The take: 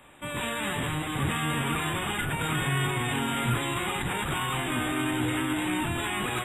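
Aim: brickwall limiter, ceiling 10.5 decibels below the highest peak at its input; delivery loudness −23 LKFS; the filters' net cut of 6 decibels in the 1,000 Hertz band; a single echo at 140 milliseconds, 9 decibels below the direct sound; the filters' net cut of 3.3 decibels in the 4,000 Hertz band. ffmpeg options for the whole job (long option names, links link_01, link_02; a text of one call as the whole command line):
ffmpeg -i in.wav -af "equalizer=frequency=1000:width_type=o:gain=-7.5,equalizer=frequency=4000:width_type=o:gain=-4,alimiter=level_in=3.5dB:limit=-24dB:level=0:latency=1,volume=-3.5dB,aecho=1:1:140:0.355,volume=12dB" out.wav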